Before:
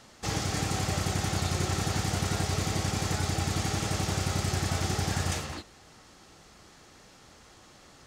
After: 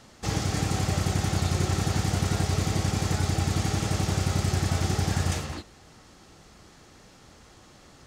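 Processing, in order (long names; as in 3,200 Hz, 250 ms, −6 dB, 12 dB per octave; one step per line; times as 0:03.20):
low-shelf EQ 380 Hz +5 dB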